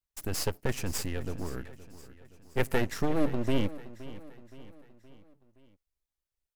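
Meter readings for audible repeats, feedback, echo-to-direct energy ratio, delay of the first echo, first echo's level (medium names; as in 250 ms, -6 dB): 4, 50%, -15.5 dB, 520 ms, -16.5 dB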